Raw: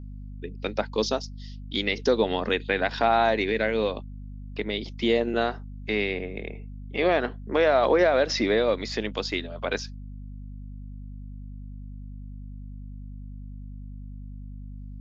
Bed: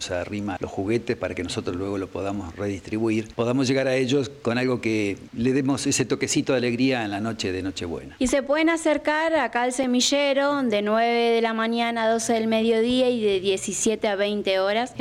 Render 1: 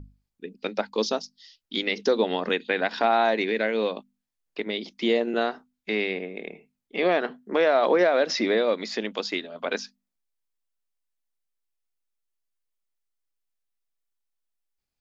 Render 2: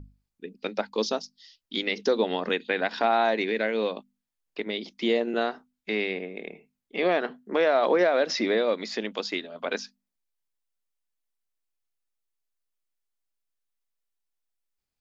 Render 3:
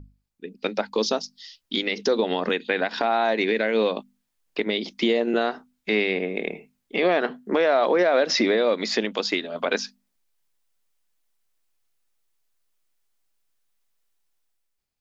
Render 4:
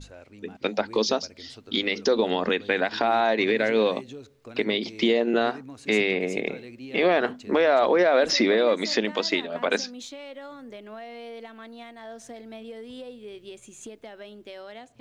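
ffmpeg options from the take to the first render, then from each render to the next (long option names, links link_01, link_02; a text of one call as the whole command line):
ffmpeg -i in.wav -af "bandreject=frequency=50:width_type=h:width=6,bandreject=frequency=100:width_type=h:width=6,bandreject=frequency=150:width_type=h:width=6,bandreject=frequency=200:width_type=h:width=6,bandreject=frequency=250:width_type=h:width=6" out.wav
ffmpeg -i in.wav -af "volume=-1.5dB" out.wav
ffmpeg -i in.wav -af "dynaudnorm=framelen=150:gausssize=9:maxgain=10.5dB,alimiter=limit=-11.5dB:level=0:latency=1:release=214" out.wav
ffmpeg -i in.wav -i bed.wav -filter_complex "[1:a]volume=-19.5dB[link_01];[0:a][link_01]amix=inputs=2:normalize=0" out.wav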